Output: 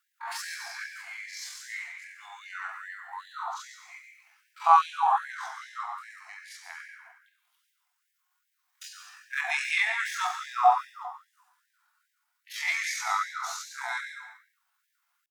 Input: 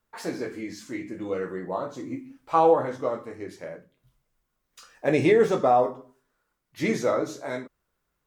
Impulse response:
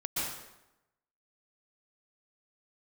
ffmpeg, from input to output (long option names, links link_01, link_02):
-filter_complex "[0:a]atempo=0.54,asplit=2[link_01][link_02];[1:a]atrim=start_sample=2205,afade=type=out:start_time=0.45:duration=0.01,atrim=end_sample=20286[link_03];[link_02][link_03]afir=irnorm=-1:irlink=0,volume=-9dB[link_04];[link_01][link_04]amix=inputs=2:normalize=0,afftfilt=real='re*gte(b*sr/1024,660*pow(1600/660,0.5+0.5*sin(2*PI*2.5*pts/sr)))':imag='im*gte(b*sr/1024,660*pow(1600/660,0.5+0.5*sin(2*PI*2.5*pts/sr)))':win_size=1024:overlap=0.75,volume=2.5dB"